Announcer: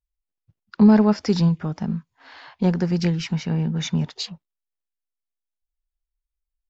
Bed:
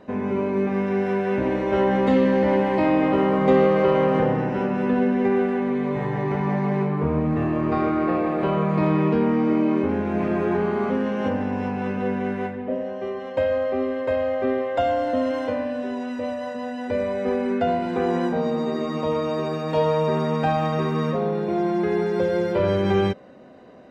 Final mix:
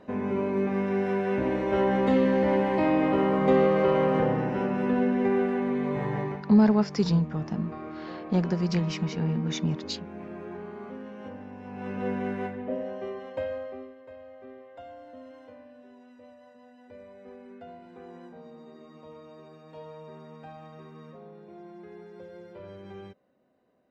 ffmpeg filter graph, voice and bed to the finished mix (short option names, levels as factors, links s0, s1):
-filter_complex "[0:a]adelay=5700,volume=0.562[s0];[1:a]volume=2.51,afade=t=out:st=6.18:d=0.24:silence=0.223872,afade=t=in:st=11.64:d=0.44:silence=0.251189,afade=t=out:st=12.92:d=1.03:silence=0.11885[s1];[s0][s1]amix=inputs=2:normalize=0"